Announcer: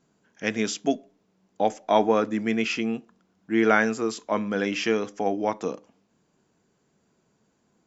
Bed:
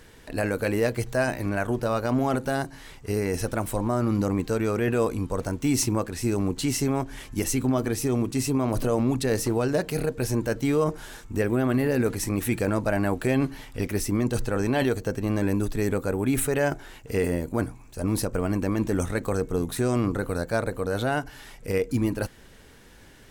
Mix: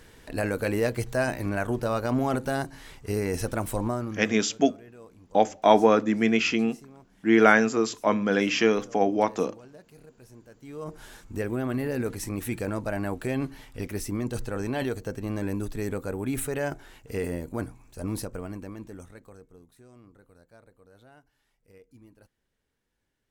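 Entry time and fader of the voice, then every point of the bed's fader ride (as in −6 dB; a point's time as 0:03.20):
3.75 s, +2.5 dB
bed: 0:03.87 −1.5 dB
0:04.50 −25 dB
0:10.56 −25 dB
0:11.02 −5.5 dB
0:18.11 −5.5 dB
0:19.74 −29 dB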